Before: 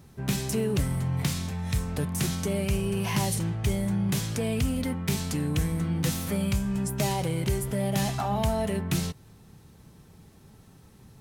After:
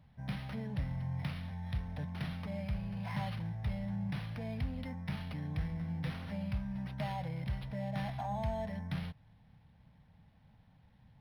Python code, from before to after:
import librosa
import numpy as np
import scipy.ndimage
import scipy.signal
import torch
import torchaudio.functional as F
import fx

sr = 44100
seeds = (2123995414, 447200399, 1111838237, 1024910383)

y = fx.fixed_phaser(x, sr, hz=1900.0, stages=8)
y = np.interp(np.arange(len(y)), np.arange(len(y))[::6], y[::6])
y = y * 10.0 ** (-8.0 / 20.0)